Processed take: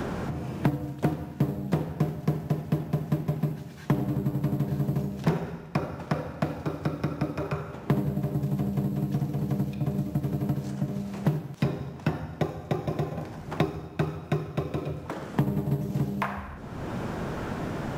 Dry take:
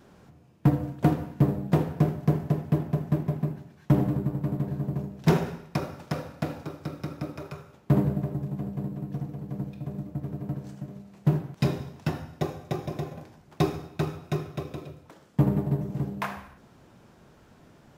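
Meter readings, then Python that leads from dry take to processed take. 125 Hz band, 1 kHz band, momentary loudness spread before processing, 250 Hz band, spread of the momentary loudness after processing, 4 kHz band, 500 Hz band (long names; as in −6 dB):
−0.5 dB, +1.0 dB, 12 LU, 0.0 dB, 5 LU, −0.5 dB, 0.0 dB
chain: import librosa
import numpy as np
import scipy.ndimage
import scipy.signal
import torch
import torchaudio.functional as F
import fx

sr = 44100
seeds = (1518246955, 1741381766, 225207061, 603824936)

y = fx.band_squash(x, sr, depth_pct=100)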